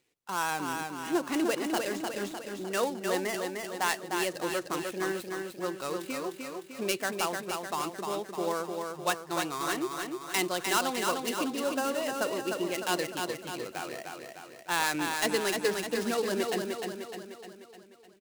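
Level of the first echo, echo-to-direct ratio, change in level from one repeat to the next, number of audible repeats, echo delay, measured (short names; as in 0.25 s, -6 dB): -4.5 dB, -3.0 dB, -5.5 dB, 6, 0.303 s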